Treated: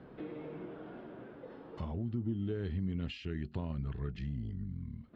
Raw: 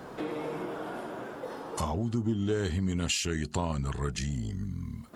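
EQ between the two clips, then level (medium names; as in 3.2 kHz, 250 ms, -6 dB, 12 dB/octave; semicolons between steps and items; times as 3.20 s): low-pass 5 kHz 12 dB/octave; distance through air 380 m; peaking EQ 940 Hz -10 dB 1.8 oct; -4.5 dB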